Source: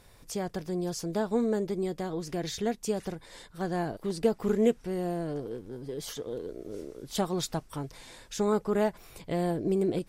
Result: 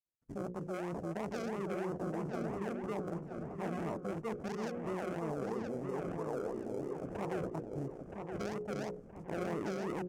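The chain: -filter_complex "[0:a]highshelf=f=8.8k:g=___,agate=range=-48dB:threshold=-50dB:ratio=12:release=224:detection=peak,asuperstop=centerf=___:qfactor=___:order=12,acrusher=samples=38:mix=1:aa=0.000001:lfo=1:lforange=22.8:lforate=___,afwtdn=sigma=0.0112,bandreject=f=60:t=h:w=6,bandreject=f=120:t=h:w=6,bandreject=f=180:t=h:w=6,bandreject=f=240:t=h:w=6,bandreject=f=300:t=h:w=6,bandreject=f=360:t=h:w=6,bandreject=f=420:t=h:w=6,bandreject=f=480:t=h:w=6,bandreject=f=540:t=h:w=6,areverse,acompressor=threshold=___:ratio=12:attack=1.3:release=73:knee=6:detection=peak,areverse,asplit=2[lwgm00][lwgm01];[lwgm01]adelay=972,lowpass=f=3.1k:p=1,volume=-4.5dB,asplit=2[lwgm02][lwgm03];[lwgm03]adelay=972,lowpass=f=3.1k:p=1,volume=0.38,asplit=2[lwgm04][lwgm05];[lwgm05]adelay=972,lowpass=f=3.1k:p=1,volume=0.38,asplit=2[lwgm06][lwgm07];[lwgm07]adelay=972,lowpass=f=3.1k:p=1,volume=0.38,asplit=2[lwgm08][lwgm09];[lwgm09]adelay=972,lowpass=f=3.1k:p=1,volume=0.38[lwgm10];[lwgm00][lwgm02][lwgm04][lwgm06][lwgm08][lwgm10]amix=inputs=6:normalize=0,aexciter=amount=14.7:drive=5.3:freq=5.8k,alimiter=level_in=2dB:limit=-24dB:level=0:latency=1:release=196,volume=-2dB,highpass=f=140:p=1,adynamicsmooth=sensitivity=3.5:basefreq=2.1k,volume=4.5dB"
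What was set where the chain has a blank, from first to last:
-6.5, 2400, 5.7, 3, -37dB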